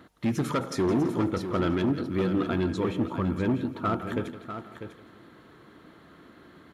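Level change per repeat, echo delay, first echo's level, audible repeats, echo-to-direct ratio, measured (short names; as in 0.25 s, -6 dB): no steady repeat, 0.166 s, -14.5 dB, 6, -8.0 dB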